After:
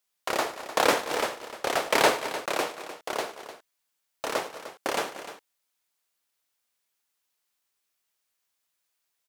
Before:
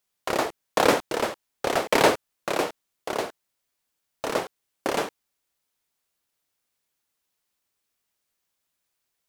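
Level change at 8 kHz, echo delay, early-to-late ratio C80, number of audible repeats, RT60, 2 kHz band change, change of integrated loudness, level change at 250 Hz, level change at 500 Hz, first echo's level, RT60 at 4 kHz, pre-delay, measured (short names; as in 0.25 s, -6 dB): +0.5 dB, 0.106 s, none, 3, none, 0.0 dB, -2.0 dB, -6.0 dB, -3.5 dB, -17.0 dB, none, none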